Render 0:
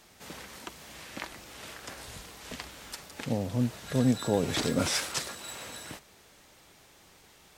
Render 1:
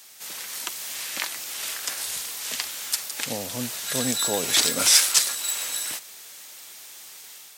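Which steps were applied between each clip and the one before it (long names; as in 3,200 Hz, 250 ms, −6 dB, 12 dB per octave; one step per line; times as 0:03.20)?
spectral tilt +4.5 dB per octave
automatic gain control gain up to 5 dB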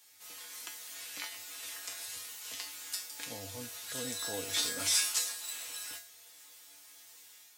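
tuned comb filter 97 Hz, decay 0.38 s, harmonics odd, mix 90%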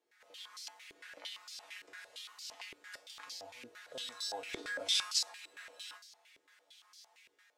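band-pass on a step sequencer 8.8 Hz 390–4,800 Hz
level +7 dB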